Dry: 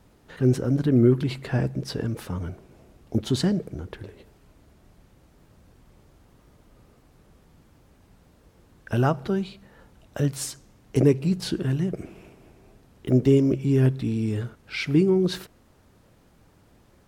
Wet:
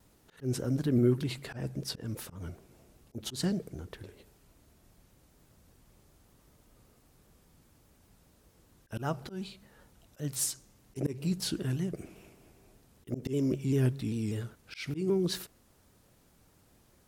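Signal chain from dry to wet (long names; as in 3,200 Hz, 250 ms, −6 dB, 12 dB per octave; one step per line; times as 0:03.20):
high-shelf EQ 4,900 Hz +12 dB
volume swells 154 ms
pitch modulation by a square or saw wave saw down 5.1 Hz, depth 100 cents
level −7.5 dB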